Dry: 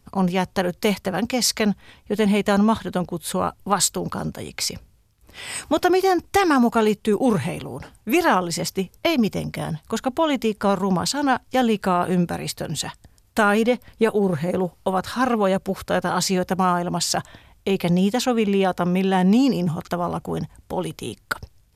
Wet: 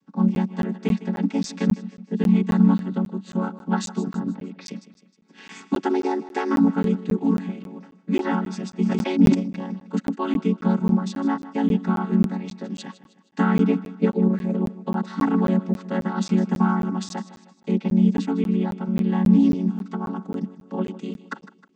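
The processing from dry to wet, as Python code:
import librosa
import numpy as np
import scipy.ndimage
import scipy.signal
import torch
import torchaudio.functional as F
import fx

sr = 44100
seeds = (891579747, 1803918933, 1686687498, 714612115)

p1 = fx.chord_vocoder(x, sr, chord='minor triad', root=54)
p2 = fx.peak_eq(p1, sr, hz=630.0, db=-15.0, octaves=0.31)
p3 = fx.rider(p2, sr, range_db=4, speed_s=2.0)
p4 = fx.air_absorb(p3, sr, metres=290.0, at=(4.17, 4.66))
p5 = p4 + fx.echo_feedback(p4, sr, ms=156, feedback_pct=48, wet_db=-16, dry=0)
p6 = fx.buffer_crackle(p5, sr, first_s=0.35, period_s=0.27, block=512, kind='zero')
y = fx.sustainer(p6, sr, db_per_s=27.0, at=(8.81, 9.34), fade=0.02)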